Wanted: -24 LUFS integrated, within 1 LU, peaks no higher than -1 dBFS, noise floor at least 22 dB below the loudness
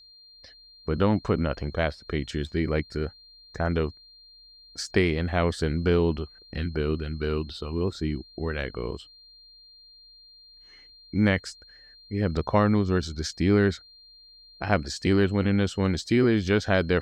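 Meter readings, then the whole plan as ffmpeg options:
steady tone 4.2 kHz; tone level -50 dBFS; loudness -26.5 LUFS; peak level -7.0 dBFS; loudness target -24.0 LUFS
-> -af "bandreject=f=4200:w=30"
-af "volume=1.33"

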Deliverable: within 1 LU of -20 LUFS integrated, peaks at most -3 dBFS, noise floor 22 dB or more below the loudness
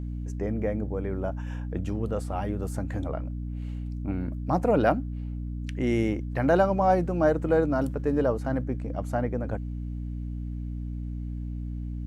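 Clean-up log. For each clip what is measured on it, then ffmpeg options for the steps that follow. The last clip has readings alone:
hum 60 Hz; highest harmonic 300 Hz; hum level -30 dBFS; loudness -28.5 LUFS; peak level -8.0 dBFS; loudness target -20.0 LUFS
-> -af "bandreject=f=60:t=h:w=4,bandreject=f=120:t=h:w=4,bandreject=f=180:t=h:w=4,bandreject=f=240:t=h:w=4,bandreject=f=300:t=h:w=4"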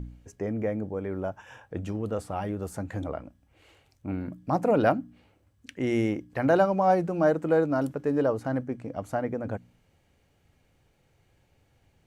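hum not found; loudness -28.0 LUFS; peak level -8.5 dBFS; loudness target -20.0 LUFS
-> -af "volume=2.51,alimiter=limit=0.708:level=0:latency=1"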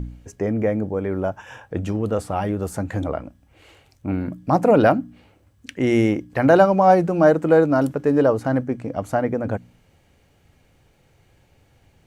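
loudness -20.0 LUFS; peak level -3.0 dBFS; noise floor -59 dBFS

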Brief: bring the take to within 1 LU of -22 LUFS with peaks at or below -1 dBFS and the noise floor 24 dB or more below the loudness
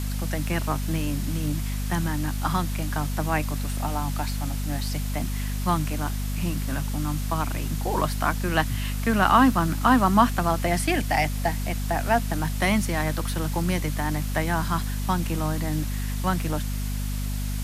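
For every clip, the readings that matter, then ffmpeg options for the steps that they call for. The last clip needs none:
hum 50 Hz; highest harmonic 250 Hz; hum level -26 dBFS; noise floor -28 dBFS; noise floor target -50 dBFS; loudness -25.5 LUFS; peak level -5.0 dBFS; loudness target -22.0 LUFS
-> -af "bandreject=f=50:t=h:w=6,bandreject=f=100:t=h:w=6,bandreject=f=150:t=h:w=6,bandreject=f=200:t=h:w=6,bandreject=f=250:t=h:w=6"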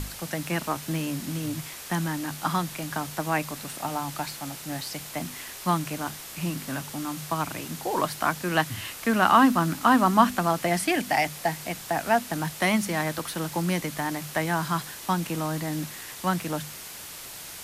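hum not found; noise floor -41 dBFS; noise floor target -51 dBFS
-> -af "afftdn=nr=10:nf=-41"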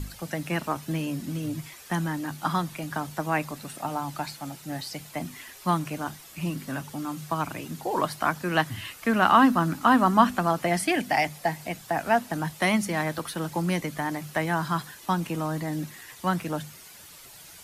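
noise floor -48 dBFS; noise floor target -52 dBFS
-> -af "afftdn=nr=6:nf=-48"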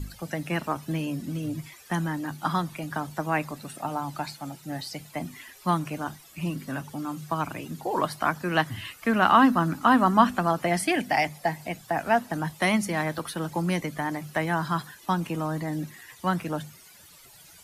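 noise floor -52 dBFS; loudness -27.5 LUFS; peak level -5.0 dBFS; loudness target -22.0 LUFS
-> -af "volume=1.88,alimiter=limit=0.891:level=0:latency=1"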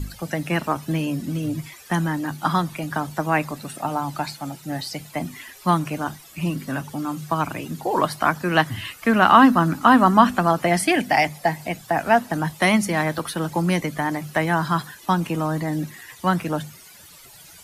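loudness -22.0 LUFS; peak level -1.0 dBFS; noise floor -46 dBFS

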